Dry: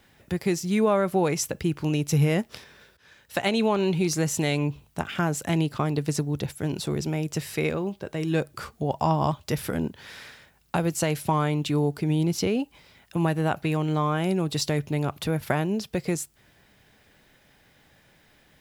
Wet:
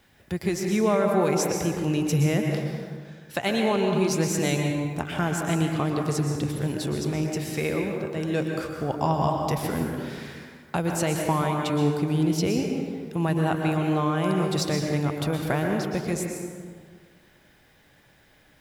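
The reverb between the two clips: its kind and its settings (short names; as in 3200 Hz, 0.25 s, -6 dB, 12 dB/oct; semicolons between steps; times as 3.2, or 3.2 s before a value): plate-style reverb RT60 1.8 s, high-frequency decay 0.5×, pre-delay 0.105 s, DRR 1.5 dB; gain -1.5 dB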